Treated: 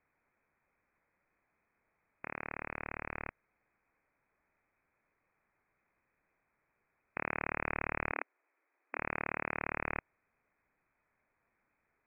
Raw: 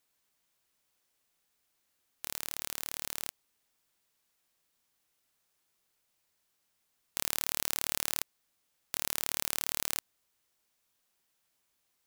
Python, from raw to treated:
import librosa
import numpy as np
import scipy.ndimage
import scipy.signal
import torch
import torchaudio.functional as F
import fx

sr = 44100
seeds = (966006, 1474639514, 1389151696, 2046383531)

y = fx.freq_invert(x, sr, carrier_hz=2500)
y = fx.brickwall_highpass(y, sr, low_hz=260.0, at=(8.12, 8.98))
y = F.gain(torch.from_numpy(y), 6.0).numpy()